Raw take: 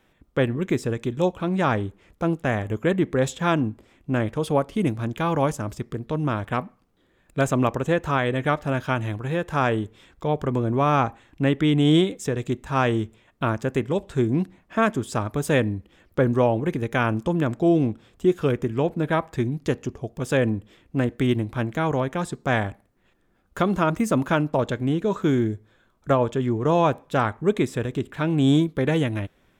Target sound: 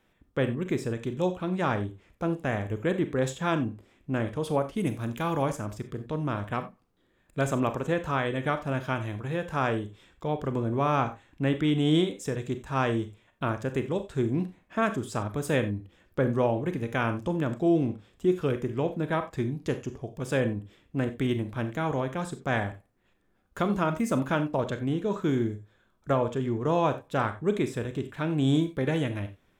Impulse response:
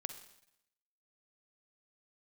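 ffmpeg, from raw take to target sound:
-filter_complex "[0:a]asettb=1/sr,asplit=3[a][b][c];[a]atrim=end=4.774[d];[b]atrim=start=4.77:end=5.43,asetpts=PTS-STARTPTS,afade=t=in:d=0.004:c=qsin,afade=t=out:st=0.656:d=0.004:c=qsin,highshelf=f=8.9k:g=12[e];[c]atrim=start=5.426[f];[d][e]acrossfade=d=0.004:c1=hsin:c2=qsin[g];[g][f]acrossfade=d=0.004:c1=qsin:c2=hsin[h];[1:a]atrim=start_sample=2205,atrim=end_sample=6174,asetrate=61740,aresample=44100[i];[h][i]afir=irnorm=-1:irlink=0"

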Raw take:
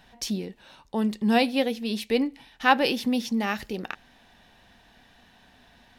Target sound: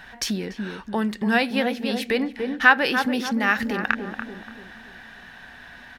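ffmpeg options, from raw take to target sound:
-filter_complex "[0:a]asplit=2[a][b];[b]adelay=288,lowpass=f=850:p=1,volume=-7dB,asplit=2[c][d];[d]adelay=288,lowpass=f=850:p=1,volume=0.48,asplit=2[e][f];[f]adelay=288,lowpass=f=850:p=1,volume=0.48,asplit=2[g][h];[h]adelay=288,lowpass=f=850:p=1,volume=0.48,asplit=2[i][j];[j]adelay=288,lowpass=f=850:p=1,volume=0.48,asplit=2[k][l];[l]adelay=288,lowpass=f=850:p=1,volume=0.48[m];[c][e][g][i][k][m]amix=inputs=6:normalize=0[n];[a][n]amix=inputs=2:normalize=0,acompressor=threshold=-32dB:ratio=2,equalizer=f=1.6k:t=o:w=0.93:g=13,volume=6dB"

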